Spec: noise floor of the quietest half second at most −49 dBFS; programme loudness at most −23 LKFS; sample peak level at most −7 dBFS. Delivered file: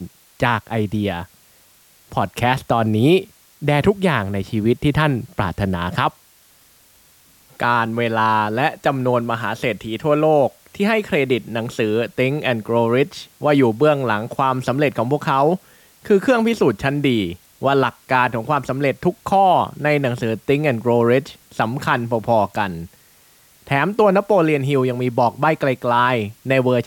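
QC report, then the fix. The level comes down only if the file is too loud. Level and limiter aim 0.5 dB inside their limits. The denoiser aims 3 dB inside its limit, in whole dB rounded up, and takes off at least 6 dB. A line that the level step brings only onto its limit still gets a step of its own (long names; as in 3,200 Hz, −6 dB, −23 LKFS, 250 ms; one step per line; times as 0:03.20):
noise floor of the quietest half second −53 dBFS: in spec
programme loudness −19.0 LKFS: out of spec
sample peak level −4.5 dBFS: out of spec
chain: level −4.5 dB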